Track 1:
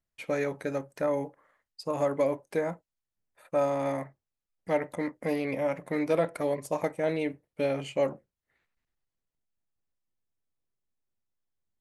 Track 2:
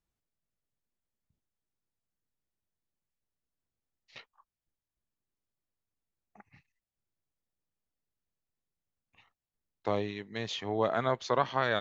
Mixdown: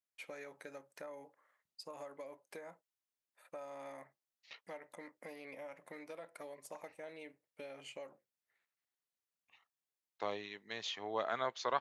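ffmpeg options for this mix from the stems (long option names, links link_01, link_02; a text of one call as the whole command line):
ffmpeg -i stem1.wav -i stem2.wav -filter_complex "[0:a]acompressor=threshold=-34dB:ratio=6,volume=-6.5dB[link_01];[1:a]adelay=350,volume=-3.5dB[link_02];[link_01][link_02]amix=inputs=2:normalize=0,highpass=frequency=850:poles=1" out.wav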